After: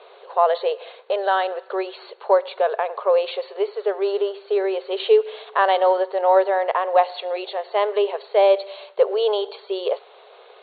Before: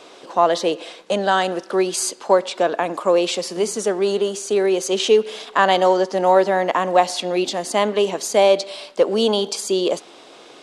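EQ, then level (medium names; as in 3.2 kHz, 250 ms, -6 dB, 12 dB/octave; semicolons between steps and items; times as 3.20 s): brick-wall FIR band-pass 380–4500 Hz; treble shelf 2 kHz -9.5 dB; 0.0 dB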